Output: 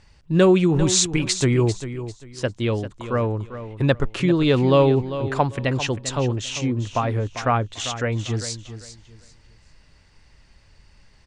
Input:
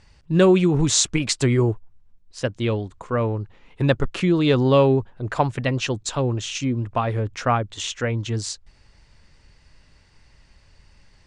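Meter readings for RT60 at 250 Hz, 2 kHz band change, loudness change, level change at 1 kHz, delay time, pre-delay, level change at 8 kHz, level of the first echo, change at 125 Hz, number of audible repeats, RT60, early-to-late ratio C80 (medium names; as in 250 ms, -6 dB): no reverb, +0.5 dB, 0.0 dB, +0.5 dB, 396 ms, no reverb, +0.5 dB, -12.0 dB, +0.5 dB, 2, no reverb, no reverb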